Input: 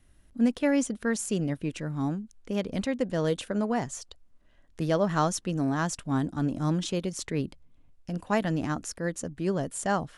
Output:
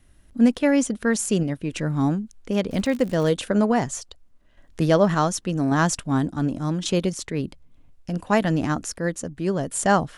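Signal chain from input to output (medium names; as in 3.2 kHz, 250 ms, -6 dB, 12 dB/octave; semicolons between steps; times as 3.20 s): 2.69–3.29 s: crackle 120 per s -36 dBFS; random-step tremolo; trim +8.5 dB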